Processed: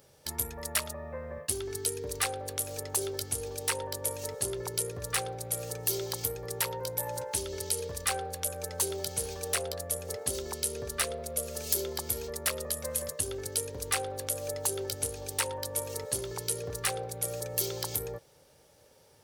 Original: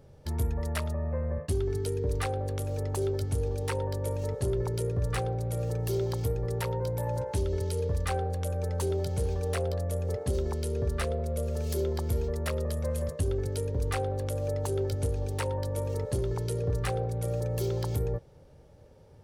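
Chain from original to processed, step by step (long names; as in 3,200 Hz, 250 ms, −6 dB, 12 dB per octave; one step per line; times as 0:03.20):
spectral tilt +4 dB per octave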